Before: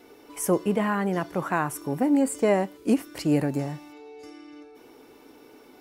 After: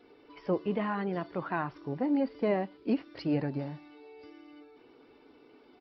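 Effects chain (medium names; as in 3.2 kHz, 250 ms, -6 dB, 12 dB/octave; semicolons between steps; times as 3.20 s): coarse spectral quantiser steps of 15 dB; resampled via 11.025 kHz; trim -6.5 dB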